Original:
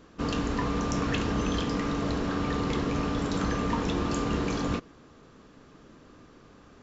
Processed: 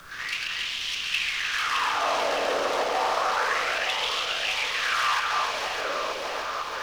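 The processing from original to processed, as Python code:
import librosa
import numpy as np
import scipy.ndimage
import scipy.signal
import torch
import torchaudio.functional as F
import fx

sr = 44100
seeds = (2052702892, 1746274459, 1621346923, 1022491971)

p1 = fx.cvsd(x, sr, bps=32000)
p2 = p1 + fx.echo_thinned(p1, sr, ms=140, feedback_pct=74, hz=470.0, wet_db=-4.5, dry=0)
p3 = fx.volume_shaper(p2, sr, bpm=127, per_beat=1, depth_db=-14, release_ms=108.0, shape='slow start')
p4 = fx.bass_treble(p3, sr, bass_db=-5, treble_db=3)
p5 = fx.over_compress(p4, sr, threshold_db=-42.0, ratio=-1.0)
p6 = p4 + (p5 * 10.0 ** (1.0 / 20.0))
p7 = 10.0 ** (-32.5 / 20.0) * np.tanh(p6 / 10.0 ** (-32.5 / 20.0))
p8 = fx.filter_lfo_highpass(p7, sr, shape='sine', hz=0.3, low_hz=550.0, high_hz=3100.0, q=4.8)
p9 = fx.echo_alternate(p8, sr, ms=307, hz=2400.0, feedback_pct=77, wet_db=-2.0)
p10 = fx.dmg_noise_colour(p9, sr, seeds[0], colour='pink', level_db=-57.0)
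y = p10 * 10.0 ** (5.0 / 20.0)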